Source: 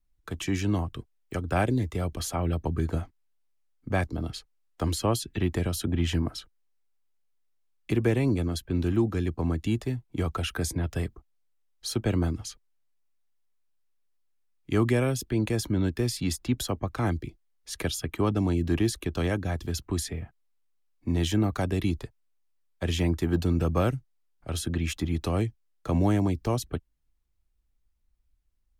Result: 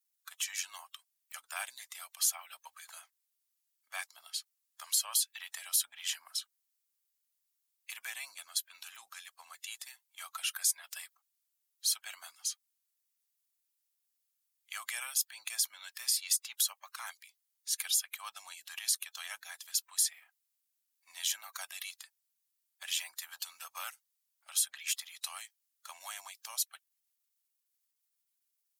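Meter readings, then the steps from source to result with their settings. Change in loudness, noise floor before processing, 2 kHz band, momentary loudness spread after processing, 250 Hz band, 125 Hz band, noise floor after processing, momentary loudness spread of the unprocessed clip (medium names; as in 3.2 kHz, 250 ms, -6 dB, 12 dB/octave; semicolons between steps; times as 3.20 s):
-6.0 dB, -70 dBFS, -5.5 dB, 19 LU, under -40 dB, under -40 dB, -83 dBFS, 11 LU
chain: coarse spectral quantiser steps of 15 dB; inverse Chebyshev high-pass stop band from 410 Hz, stop band 40 dB; differentiator; trim +6.5 dB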